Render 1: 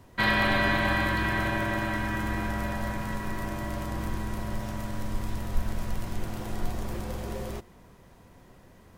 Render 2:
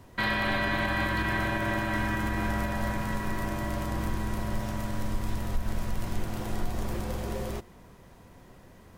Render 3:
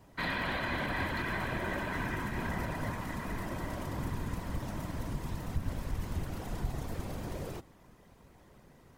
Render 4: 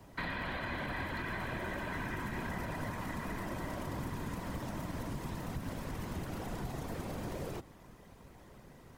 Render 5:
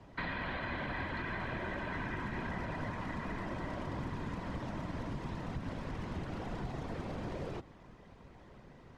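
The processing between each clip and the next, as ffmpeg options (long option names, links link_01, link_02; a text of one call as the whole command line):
ffmpeg -i in.wav -af "alimiter=limit=-20dB:level=0:latency=1:release=138,volume=1.5dB" out.wav
ffmpeg -i in.wav -af "afftfilt=real='hypot(re,im)*cos(2*PI*random(0))':imag='hypot(re,im)*sin(2*PI*random(1))':win_size=512:overlap=0.75" out.wav
ffmpeg -i in.wav -filter_complex "[0:a]acrossover=split=130|2800[link_01][link_02][link_03];[link_01]acompressor=threshold=-47dB:ratio=4[link_04];[link_02]acompressor=threshold=-41dB:ratio=4[link_05];[link_03]acompressor=threshold=-57dB:ratio=4[link_06];[link_04][link_05][link_06]amix=inputs=3:normalize=0,volume=3dB" out.wav
ffmpeg -i in.wav -af "lowpass=4300" out.wav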